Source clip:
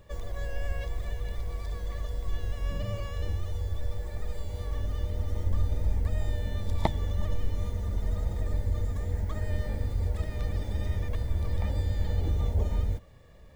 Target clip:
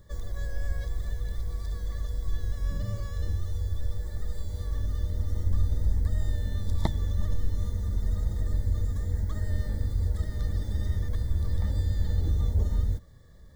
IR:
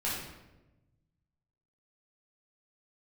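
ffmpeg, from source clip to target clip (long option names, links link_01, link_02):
-af "asuperstop=centerf=2600:order=4:qfactor=1.8,equalizer=frequency=730:width=0.74:gain=-9.5,volume=2dB"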